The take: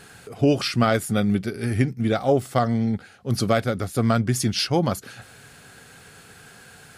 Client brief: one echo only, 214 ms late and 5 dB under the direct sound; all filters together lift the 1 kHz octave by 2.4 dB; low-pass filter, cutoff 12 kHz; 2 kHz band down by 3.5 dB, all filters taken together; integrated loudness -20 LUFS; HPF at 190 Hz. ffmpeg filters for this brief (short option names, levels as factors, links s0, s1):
-af "highpass=190,lowpass=12000,equalizer=f=1000:t=o:g=6,equalizer=f=2000:t=o:g=-8,aecho=1:1:214:0.562,volume=1.41"